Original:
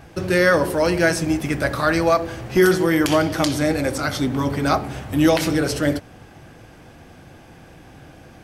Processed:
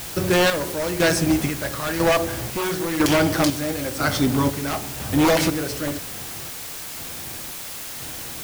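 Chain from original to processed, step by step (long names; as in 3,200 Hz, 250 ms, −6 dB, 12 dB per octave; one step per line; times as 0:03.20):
wave folding −13.5 dBFS
square-wave tremolo 1 Hz, depth 60%, duty 50%
background noise white −36 dBFS
level +2 dB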